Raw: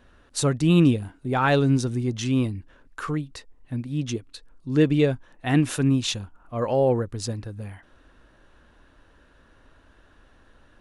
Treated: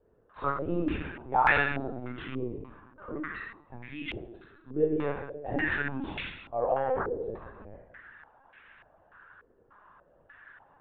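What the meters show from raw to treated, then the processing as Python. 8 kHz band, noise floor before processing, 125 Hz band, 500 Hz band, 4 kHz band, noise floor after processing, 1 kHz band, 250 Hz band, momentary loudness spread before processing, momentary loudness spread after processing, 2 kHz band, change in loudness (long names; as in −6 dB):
below −40 dB, −57 dBFS, −17.0 dB, −6.0 dB, −12.0 dB, −64 dBFS, +0.5 dB, −12.5 dB, 15 LU, 22 LU, +2.5 dB, −7.5 dB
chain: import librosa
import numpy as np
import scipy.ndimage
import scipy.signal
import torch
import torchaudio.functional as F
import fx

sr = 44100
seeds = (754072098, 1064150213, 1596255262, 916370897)

y = fx.tilt_shelf(x, sr, db=-10.0, hz=660.0)
y = 10.0 ** (-16.5 / 20.0) * np.tanh(y / 10.0 ** (-16.5 / 20.0))
y = fx.rev_plate(y, sr, seeds[0], rt60_s=1.1, hf_ratio=0.8, predelay_ms=0, drr_db=-1.0)
y = fx.lpc_vocoder(y, sr, seeds[1], excitation='pitch_kept', order=16)
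y = fx.filter_held_lowpass(y, sr, hz=3.4, low_hz=440.0, high_hz=2200.0)
y = F.gain(torch.from_numpy(y), -9.0).numpy()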